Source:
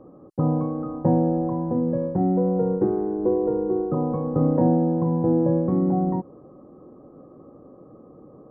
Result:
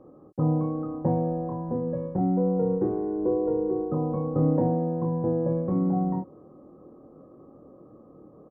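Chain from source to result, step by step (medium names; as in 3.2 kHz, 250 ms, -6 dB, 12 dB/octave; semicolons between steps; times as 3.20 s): doubling 26 ms -5 dB; trim -4.5 dB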